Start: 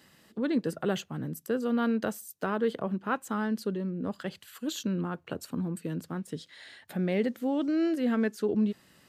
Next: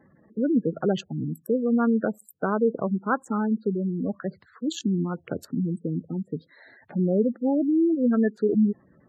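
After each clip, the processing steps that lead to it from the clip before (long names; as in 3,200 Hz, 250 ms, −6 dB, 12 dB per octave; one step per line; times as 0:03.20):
adaptive Wiener filter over 15 samples
gate on every frequency bin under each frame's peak −15 dB strong
level +6 dB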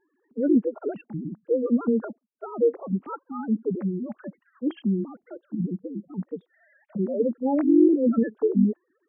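three sine waves on the formant tracks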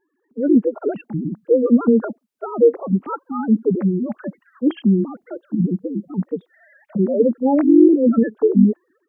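automatic gain control gain up to 9 dB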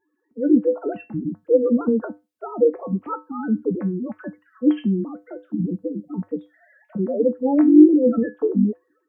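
tuned comb filter 100 Hz, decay 0.23 s, harmonics odd, mix 80%
level +6 dB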